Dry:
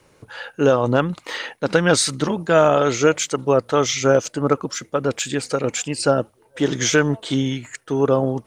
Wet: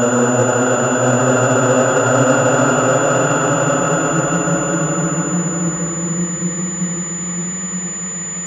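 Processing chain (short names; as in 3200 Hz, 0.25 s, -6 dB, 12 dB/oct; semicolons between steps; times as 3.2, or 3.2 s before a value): spectral swells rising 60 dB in 0.78 s; gate -27 dBFS, range -9 dB; in parallel at -2 dB: limiter -11 dBFS, peak gain reduction 10 dB; on the sum: vibrato 8.1 Hz 21 cents; Paulstretch 28×, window 0.25 s, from 0.88; pulse-width modulation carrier 7000 Hz; gain -1.5 dB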